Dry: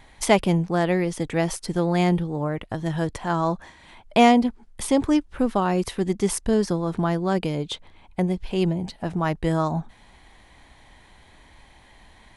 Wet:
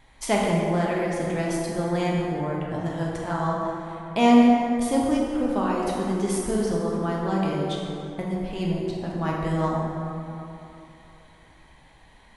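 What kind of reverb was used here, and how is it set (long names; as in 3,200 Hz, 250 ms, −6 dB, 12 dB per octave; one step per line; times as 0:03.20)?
dense smooth reverb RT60 3 s, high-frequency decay 0.45×, DRR −4 dB
level −7 dB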